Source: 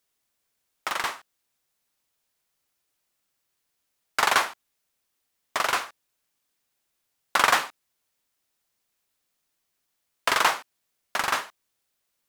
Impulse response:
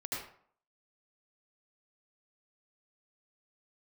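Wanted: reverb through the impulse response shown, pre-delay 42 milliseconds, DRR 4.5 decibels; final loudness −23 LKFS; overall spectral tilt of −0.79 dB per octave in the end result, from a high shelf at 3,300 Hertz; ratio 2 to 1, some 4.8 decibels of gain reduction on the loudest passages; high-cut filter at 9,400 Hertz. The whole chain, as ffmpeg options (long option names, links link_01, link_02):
-filter_complex "[0:a]lowpass=9400,highshelf=frequency=3300:gain=-4.5,acompressor=threshold=-24dB:ratio=2,asplit=2[link_01][link_02];[1:a]atrim=start_sample=2205,adelay=42[link_03];[link_02][link_03]afir=irnorm=-1:irlink=0,volume=-7dB[link_04];[link_01][link_04]amix=inputs=2:normalize=0,volume=6dB"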